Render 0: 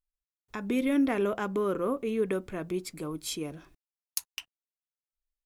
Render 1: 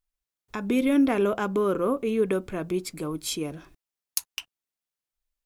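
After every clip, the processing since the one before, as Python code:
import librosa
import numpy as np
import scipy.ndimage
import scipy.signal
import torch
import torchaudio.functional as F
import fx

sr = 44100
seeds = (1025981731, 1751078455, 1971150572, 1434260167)

y = fx.dynamic_eq(x, sr, hz=1900.0, q=7.0, threshold_db=-58.0, ratio=4.0, max_db=-6)
y = y * librosa.db_to_amplitude(4.5)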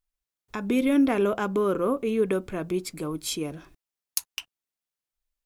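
y = x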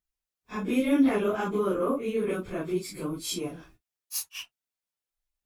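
y = fx.phase_scramble(x, sr, seeds[0], window_ms=100)
y = y * librosa.db_to_amplitude(-2.0)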